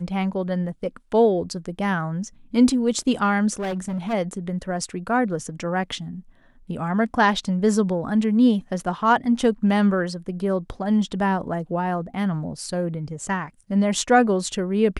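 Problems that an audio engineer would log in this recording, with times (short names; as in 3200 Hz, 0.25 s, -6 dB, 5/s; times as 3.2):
3.54–4.14 clipped -23.5 dBFS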